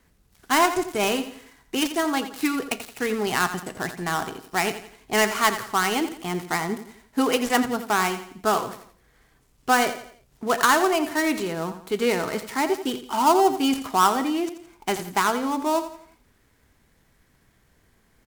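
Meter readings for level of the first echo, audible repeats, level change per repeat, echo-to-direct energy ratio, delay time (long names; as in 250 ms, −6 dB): −11.5 dB, 3, −8.0 dB, −11.0 dB, 85 ms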